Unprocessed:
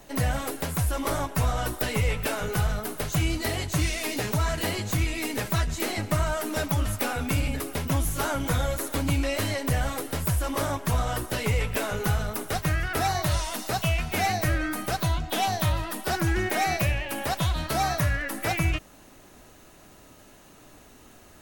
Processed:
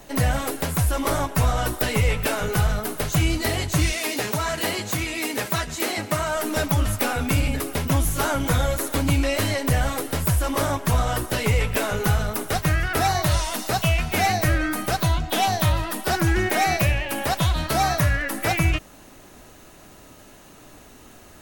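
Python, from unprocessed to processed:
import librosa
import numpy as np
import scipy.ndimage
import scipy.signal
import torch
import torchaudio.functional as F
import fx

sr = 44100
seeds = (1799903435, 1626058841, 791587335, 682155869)

y = fx.highpass(x, sr, hz=260.0, slope=6, at=(3.92, 6.35))
y = y * 10.0 ** (4.5 / 20.0)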